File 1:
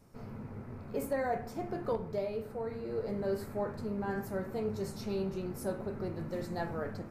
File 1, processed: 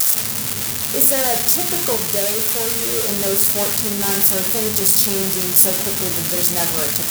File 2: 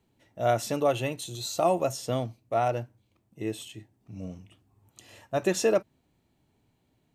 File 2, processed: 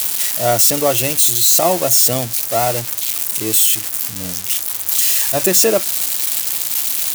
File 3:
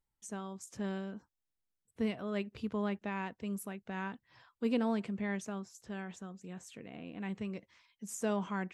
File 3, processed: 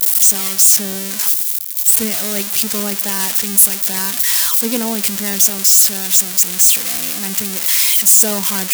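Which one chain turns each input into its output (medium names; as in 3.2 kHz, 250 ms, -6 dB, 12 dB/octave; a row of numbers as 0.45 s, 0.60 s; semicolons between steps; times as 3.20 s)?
zero-crossing glitches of -18.5 dBFS; high-pass 58 Hz; treble shelf 4.9 kHz +5.5 dB; peak normalisation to -1.5 dBFS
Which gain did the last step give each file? +10.0 dB, +8.0 dB, +10.5 dB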